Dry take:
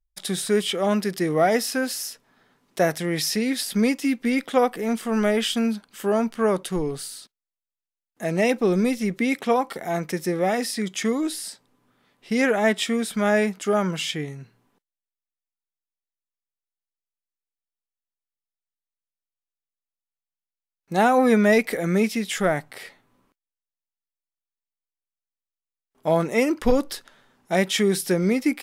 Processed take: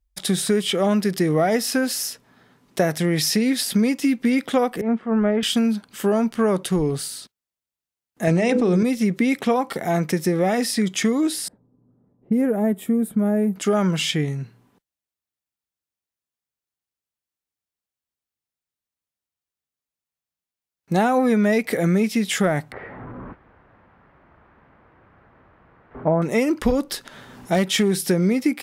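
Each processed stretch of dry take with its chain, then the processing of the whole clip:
4.81–5.43 LPF 1700 Hz + three-band expander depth 100%
8.27–8.83 Chebyshev low-pass 8700 Hz, order 3 + notches 50/100/150/200/250/300/350/400/450/500 Hz + fast leveller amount 100%
11.48–13.56 low-pass opened by the level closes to 840 Hz, open at -21 dBFS + EQ curve 180 Hz 0 dB, 480 Hz -4 dB, 5300 Hz -28 dB, 13000 Hz +4 dB
22.72–26.22 zero-crossing step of -36.5 dBFS + LPF 1600 Hz 24 dB/oct
26.8–27.91 upward compressor, threshold -36 dBFS + overloaded stage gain 14.5 dB
whole clip: HPF 40 Hz; low shelf 200 Hz +9 dB; compressor 4:1, threshold -21 dBFS; gain +4.5 dB

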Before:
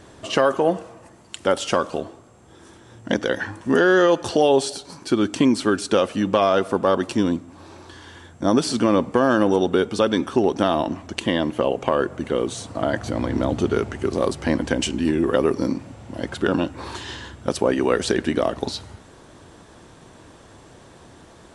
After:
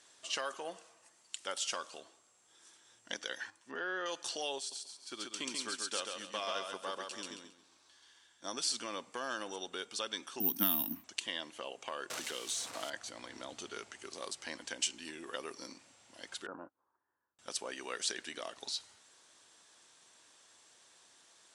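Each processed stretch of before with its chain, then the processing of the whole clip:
3.5–4.06 treble ducked by the level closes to 1900 Hz, closed at -16 dBFS + upward expander, over -30 dBFS
4.58–8.44 feedback echo 0.136 s, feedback 39%, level -3 dB + upward expander, over -31 dBFS
10.4–11.04 careless resampling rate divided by 3×, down filtered, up zero stuff + resonant low shelf 350 Hz +12 dB, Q 3 + three-band expander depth 100%
12.1–12.9 zero-crossing step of -31.5 dBFS + three-band squash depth 100%
16.46–17.39 steep low-pass 1400 Hz + gate -29 dBFS, range -25 dB
whole clip: LPF 7600 Hz 12 dB/oct; differentiator; gain -2 dB

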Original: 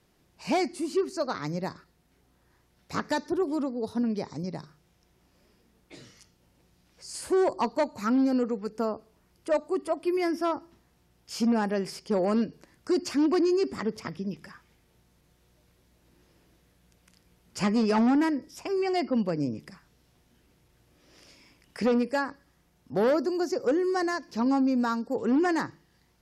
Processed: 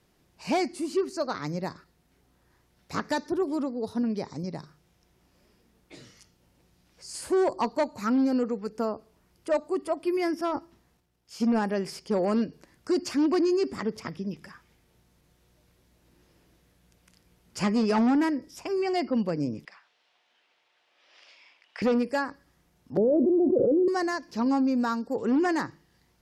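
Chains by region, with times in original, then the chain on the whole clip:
10.34–11.59 transient shaper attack +1 dB, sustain +10 dB + upward expander, over -42 dBFS
19.65–21.82 Chebyshev band-pass 700–3200 Hz + high shelf 2200 Hz +9 dB
22.97–23.88 steep low-pass 610 Hz + fast leveller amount 100%
whole clip: dry

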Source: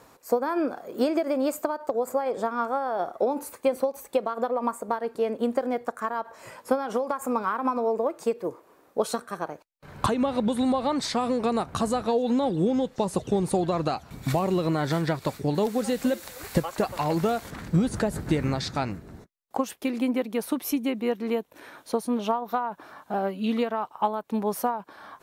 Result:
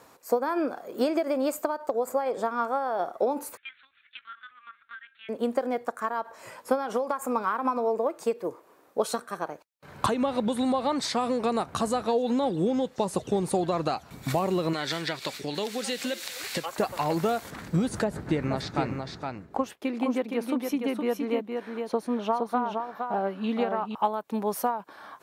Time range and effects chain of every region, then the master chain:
3.57–5.29 elliptic high-pass 1500 Hz, stop band 50 dB + LPC vocoder at 8 kHz pitch kept
14.73–16.66 weighting filter D + compressor 1.5:1, threshold -33 dBFS
18.04–23.95 LPF 2800 Hz 6 dB/oct + echo 0.466 s -5 dB
whole clip: HPF 52 Hz; low shelf 220 Hz -5.5 dB

